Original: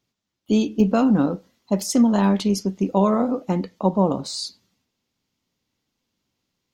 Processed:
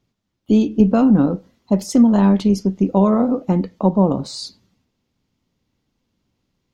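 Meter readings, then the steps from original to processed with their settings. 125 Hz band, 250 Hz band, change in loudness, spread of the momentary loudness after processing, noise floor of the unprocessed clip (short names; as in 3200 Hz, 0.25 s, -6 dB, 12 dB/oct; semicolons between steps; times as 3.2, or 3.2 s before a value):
+5.5 dB, +5.0 dB, +4.5 dB, 11 LU, -81 dBFS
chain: tilt -2 dB/oct; in parallel at -3 dB: compressor, threshold -24 dBFS, peak gain reduction 15.5 dB; on the sum: gain -1 dB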